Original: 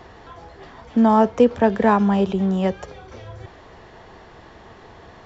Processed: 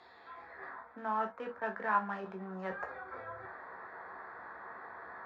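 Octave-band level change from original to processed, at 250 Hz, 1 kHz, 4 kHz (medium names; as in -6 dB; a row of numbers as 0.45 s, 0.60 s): -27.5 dB, -13.0 dB, under -20 dB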